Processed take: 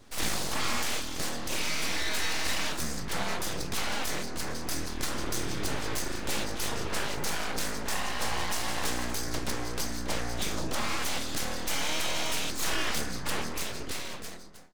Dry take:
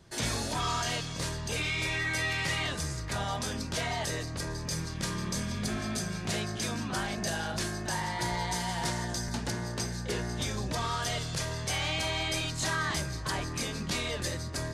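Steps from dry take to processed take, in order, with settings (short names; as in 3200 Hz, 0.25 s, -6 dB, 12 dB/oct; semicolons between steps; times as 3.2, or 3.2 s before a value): ending faded out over 1.31 s; full-wave rectifier; gain +4 dB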